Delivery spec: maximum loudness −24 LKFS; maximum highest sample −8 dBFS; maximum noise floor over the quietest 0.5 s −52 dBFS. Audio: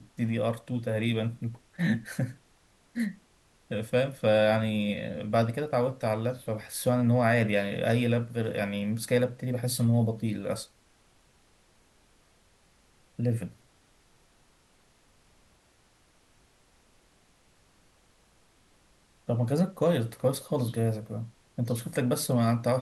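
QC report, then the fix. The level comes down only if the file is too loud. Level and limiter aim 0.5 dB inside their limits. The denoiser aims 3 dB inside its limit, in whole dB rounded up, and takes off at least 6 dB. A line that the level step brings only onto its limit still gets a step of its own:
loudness −29.0 LKFS: in spec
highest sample −12.0 dBFS: in spec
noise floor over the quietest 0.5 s −64 dBFS: in spec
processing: no processing needed

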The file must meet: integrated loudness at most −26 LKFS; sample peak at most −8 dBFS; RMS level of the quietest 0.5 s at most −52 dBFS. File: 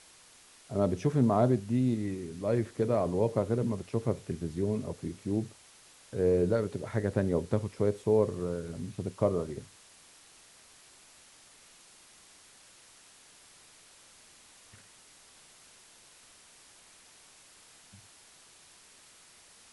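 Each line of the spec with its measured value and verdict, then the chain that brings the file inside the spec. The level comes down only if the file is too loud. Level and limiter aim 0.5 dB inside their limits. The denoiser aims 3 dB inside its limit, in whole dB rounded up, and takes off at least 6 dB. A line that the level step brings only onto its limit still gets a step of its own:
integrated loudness −30.5 LKFS: in spec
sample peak −12.0 dBFS: in spec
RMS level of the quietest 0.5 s −57 dBFS: in spec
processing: no processing needed

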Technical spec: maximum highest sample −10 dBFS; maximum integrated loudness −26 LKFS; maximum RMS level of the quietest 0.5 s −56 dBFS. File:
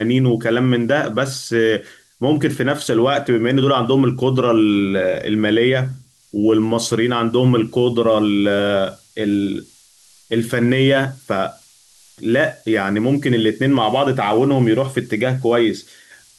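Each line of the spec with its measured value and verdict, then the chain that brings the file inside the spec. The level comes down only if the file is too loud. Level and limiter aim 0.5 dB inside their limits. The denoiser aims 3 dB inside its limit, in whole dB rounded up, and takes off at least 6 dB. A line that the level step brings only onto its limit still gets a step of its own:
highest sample −5.5 dBFS: out of spec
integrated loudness −17.5 LKFS: out of spec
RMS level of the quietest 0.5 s −51 dBFS: out of spec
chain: level −9 dB

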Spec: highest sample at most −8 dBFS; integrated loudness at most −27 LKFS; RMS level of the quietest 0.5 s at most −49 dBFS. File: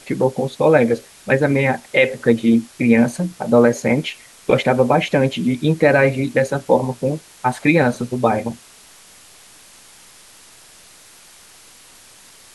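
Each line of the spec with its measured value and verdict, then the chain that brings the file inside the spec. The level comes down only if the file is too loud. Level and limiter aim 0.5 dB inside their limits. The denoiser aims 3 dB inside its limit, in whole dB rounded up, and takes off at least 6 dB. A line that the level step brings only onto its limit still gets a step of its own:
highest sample −1.5 dBFS: out of spec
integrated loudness −17.5 LKFS: out of spec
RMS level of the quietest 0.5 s −46 dBFS: out of spec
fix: level −10 dB

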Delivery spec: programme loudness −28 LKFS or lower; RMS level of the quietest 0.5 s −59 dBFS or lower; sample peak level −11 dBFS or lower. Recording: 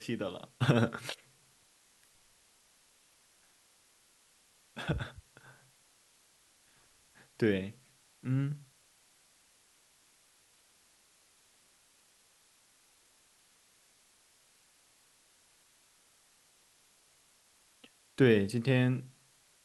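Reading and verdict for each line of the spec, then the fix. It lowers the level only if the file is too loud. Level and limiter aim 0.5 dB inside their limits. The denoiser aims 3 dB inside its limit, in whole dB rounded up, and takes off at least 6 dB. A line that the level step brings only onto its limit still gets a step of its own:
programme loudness −32.0 LKFS: in spec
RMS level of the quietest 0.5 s −67 dBFS: in spec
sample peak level −11.5 dBFS: in spec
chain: no processing needed

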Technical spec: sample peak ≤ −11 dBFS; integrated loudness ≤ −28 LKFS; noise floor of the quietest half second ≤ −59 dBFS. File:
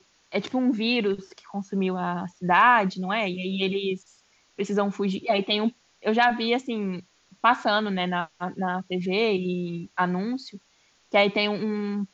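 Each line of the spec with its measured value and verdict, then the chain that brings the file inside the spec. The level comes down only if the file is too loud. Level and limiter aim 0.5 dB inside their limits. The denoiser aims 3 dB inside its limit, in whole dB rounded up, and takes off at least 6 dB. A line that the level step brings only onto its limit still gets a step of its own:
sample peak −6.5 dBFS: out of spec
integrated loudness −25.0 LKFS: out of spec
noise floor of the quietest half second −63 dBFS: in spec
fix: level −3.5 dB
brickwall limiter −11.5 dBFS

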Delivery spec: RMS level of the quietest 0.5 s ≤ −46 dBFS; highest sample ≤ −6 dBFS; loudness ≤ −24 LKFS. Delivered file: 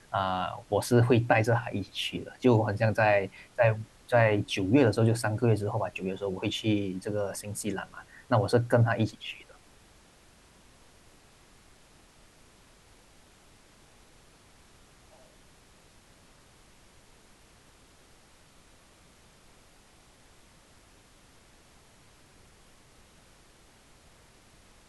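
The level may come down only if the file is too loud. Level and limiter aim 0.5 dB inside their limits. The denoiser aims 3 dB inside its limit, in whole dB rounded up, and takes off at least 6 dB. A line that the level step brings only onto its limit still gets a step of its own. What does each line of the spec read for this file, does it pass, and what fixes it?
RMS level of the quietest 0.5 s −58 dBFS: in spec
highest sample −9.0 dBFS: in spec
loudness −27.5 LKFS: in spec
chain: no processing needed

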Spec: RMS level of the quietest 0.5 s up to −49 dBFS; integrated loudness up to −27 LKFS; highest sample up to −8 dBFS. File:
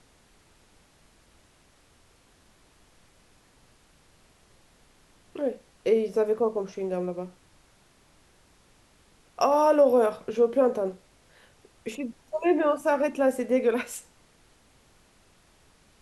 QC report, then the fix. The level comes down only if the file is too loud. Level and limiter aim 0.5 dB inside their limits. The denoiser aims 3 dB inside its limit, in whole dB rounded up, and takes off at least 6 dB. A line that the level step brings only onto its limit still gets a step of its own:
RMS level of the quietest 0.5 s −61 dBFS: in spec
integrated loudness −25.5 LKFS: out of spec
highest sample −10.0 dBFS: in spec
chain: level −2 dB

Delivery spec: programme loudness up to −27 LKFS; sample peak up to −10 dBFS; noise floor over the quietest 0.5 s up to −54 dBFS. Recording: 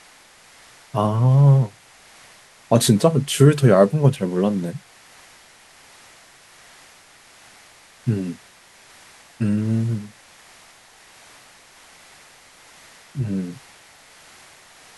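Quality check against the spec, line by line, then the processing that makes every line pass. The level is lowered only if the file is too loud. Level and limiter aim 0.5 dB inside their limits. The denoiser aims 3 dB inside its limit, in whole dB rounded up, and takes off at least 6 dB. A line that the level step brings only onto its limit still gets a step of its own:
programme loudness −19.0 LKFS: out of spec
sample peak −2.0 dBFS: out of spec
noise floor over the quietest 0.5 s −50 dBFS: out of spec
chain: level −8.5 dB

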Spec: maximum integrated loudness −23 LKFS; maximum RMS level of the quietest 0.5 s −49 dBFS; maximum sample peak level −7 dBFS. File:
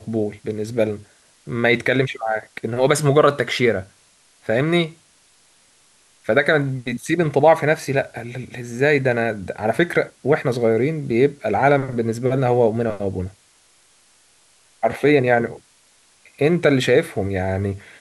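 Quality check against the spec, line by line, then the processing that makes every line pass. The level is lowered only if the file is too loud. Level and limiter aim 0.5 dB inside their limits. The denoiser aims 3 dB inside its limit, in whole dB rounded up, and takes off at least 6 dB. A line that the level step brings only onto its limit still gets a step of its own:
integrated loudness −19.5 LKFS: out of spec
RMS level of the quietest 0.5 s −56 dBFS: in spec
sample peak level −3.5 dBFS: out of spec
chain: level −4 dB

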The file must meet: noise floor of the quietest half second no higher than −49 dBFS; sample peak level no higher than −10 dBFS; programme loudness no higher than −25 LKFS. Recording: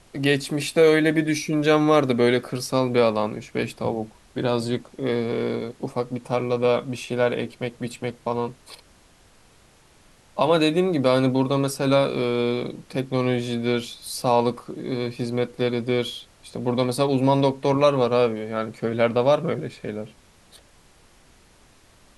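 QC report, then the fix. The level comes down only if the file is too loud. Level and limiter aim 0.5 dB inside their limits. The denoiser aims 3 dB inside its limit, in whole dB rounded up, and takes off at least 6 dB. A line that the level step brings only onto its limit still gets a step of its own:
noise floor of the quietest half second −55 dBFS: in spec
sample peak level −5.5 dBFS: out of spec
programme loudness −23.0 LKFS: out of spec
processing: level −2.5 dB
brickwall limiter −10.5 dBFS

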